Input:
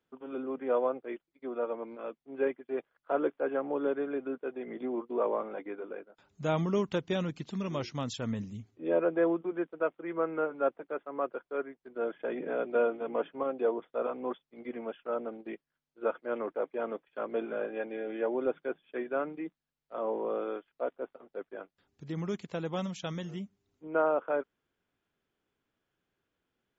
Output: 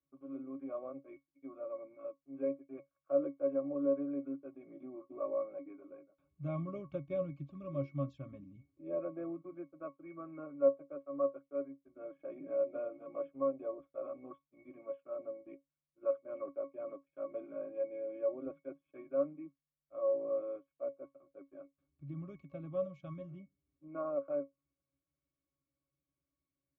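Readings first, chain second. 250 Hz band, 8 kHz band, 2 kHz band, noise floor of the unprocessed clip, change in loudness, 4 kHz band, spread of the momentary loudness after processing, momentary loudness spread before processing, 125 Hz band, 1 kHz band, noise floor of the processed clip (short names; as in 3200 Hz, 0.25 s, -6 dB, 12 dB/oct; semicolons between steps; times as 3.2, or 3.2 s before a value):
-7.0 dB, n/a, under -20 dB, under -85 dBFS, -5.5 dB, under -25 dB, 18 LU, 13 LU, -5.5 dB, -13.0 dB, under -85 dBFS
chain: octave resonator C#, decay 0.15 s; dynamic EQ 560 Hz, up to +4 dB, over -50 dBFS; gain +2 dB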